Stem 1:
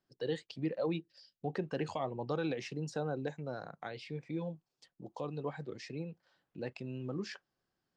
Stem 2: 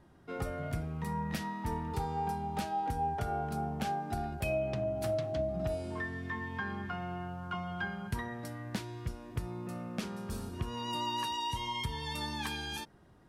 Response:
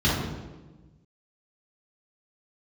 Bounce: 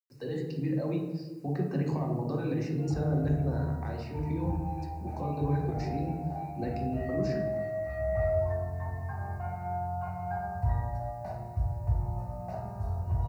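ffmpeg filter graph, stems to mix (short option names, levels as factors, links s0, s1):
-filter_complex "[0:a]acrossover=split=110|270|750[s0][s1][s2][s3];[s0]acompressor=threshold=0.00126:ratio=4[s4];[s1]acompressor=threshold=0.00708:ratio=4[s5];[s2]acompressor=threshold=0.00891:ratio=4[s6];[s3]acompressor=threshold=0.00355:ratio=4[s7];[s4][s5][s6][s7]amix=inputs=4:normalize=0,volume=1.12,asplit=2[s8][s9];[s9]volume=0.178[s10];[1:a]firequalizer=gain_entry='entry(110,0);entry(170,-14);entry(270,-23);entry(670,15);entry(1100,-4);entry(2500,-15)':delay=0.05:min_phase=1,asoftclip=type=tanh:threshold=0.075,adelay=2500,volume=0.376,afade=t=in:st=7.77:d=0.4:silence=0.375837,asplit=2[s11][s12];[s12]volume=0.398[s13];[2:a]atrim=start_sample=2205[s14];[s10][s13]amix=inputs=2:normalize=0[s15];[s15][s14]afir=irnorm=-1:irlink=0[s16];[s8][s11][s16]amix=inputs=3:normalize=0,acrusher=bits=10:mix=0:aa=0.000001,asuperstop=centerf=3300:order=4:qfactor=3.5"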